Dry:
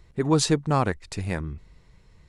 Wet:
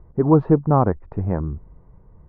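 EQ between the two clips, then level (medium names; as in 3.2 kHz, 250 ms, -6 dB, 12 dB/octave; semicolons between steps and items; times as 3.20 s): low-pass 1.1 kHz 24 dB/octave; +6.5 dB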